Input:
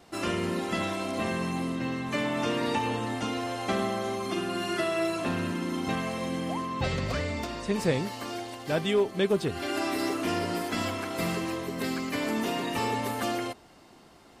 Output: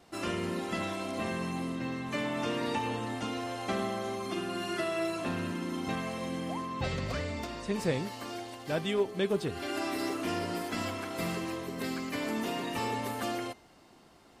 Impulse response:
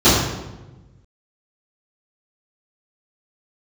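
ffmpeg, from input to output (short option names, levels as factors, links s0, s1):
-af "bandreject=f=419.1:t=h:w=4,bandreject=f=838.2:t=h:w=4,bandreject=f=1257.3:t=h:w=4,bandreject=f=1676.4:t=h:w=4,bandreject=f=2095.5:t=h:w=4,bandreject=f=2514.6:t=h:w=4,bandreject=f=2933.7:t=h:w=4,bandreject=f=3352.8:t=h:w=4,bandreject=f=3771.9:t=h:w=4,bandreject=f=4191:t=h:w=4,bandreject=f=4610.1:t=h:w=4,bandreject=f=5029.2:t=h:w=4,bandreject=f=5448.3:t=h:w=4,bandreject=f=5867.4:t=h:w=4,bandreject=f=6286.5:t=h:w=4,bandreject=f=6705.6:t=h:w=4,bandreject=f=7124.7:t=h:w=4,bandreject=f=7543.8:t=h:w=4,bandreject=f=7962.9:t=h:w=4,bandreject=f=8382:t=h:w=4,bandreject=f=8801.1:t=h:w=4,bandreject=f=9220.2:t=h:w=4,bandreject=f=9639.3:t=h:w=4,bandreject=f=10058.4:t=h:w=4,bandreject=f=10477.5:t=h:w=4,bandreject=f=10896.6:t=h:w=4,bandreject=f=11315.7:t=h:w=4,bandreject=f=11734.8:t=h:w=4,bandreject=f=12153.9:t=h:w=4,bandreject=f=12573:t=h:w=4,bandreject=f=12992.1:t=h:w=4,bandreject=f=13411.2:t=h:w=4,bandreject=f=13830.3:t=h:w=4,bandreject=f=14249.4:t=h:w=4,bandreject=f=14668.5:t=h:w=4,bandreject=f=15087.6:t=h:w=4,bandreject=f=15506.7:t=h:w=4,volume=0.631"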